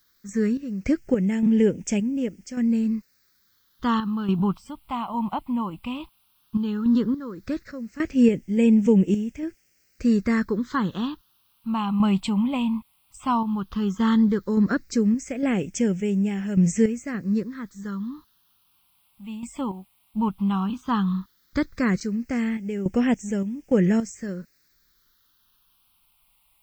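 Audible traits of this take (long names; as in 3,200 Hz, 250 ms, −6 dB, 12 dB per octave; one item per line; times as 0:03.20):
sample-and-hold tremolo, depth 85%
a quantiser's noise floor 12 bits, dither triangular
phaser sweep stages 6, 0.14 Hz, lowest notch 440–1,100 Hz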